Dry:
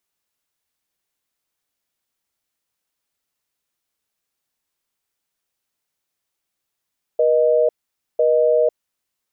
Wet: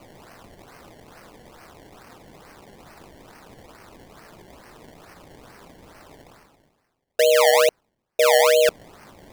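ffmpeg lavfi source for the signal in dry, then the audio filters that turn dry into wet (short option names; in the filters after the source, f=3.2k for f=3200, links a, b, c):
-f lavfi -i "aevalsrc='0.168*(sin(2*PI*480*t)+sin(2*PI*620*t))*clip(min(mod(t,1),0.5-mod(t,1))/0.005,0,1)':d=1.77:s=44100"
-af "areverse,acompressor=mode=upward:threshold=-21dB:ratio=2.5,areverse,acrusher=samples=24:mix=1:aa=0.000001:lfo=1:lforange=24:lforate=2.3"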